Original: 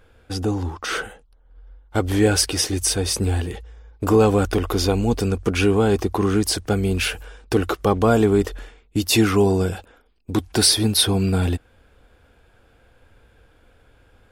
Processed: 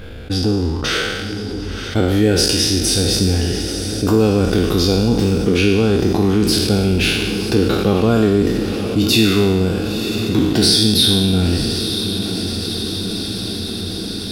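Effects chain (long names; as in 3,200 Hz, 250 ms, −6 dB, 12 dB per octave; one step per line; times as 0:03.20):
peak hold with a decay on every bin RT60 1.18 s
octave-band graphic EQ 1,000/4,000/8,000 Hz −7/+6/−6 dB
transient designer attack +1 dB, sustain −7 dB
parametric band 180 Hz +7 dB 2.1 octaves
on a send: feedback delay with all-pass diffusion 987 ms, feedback 61%, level −14.5 dB
on the sum: envelope flattener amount 50%
level −4.5 dB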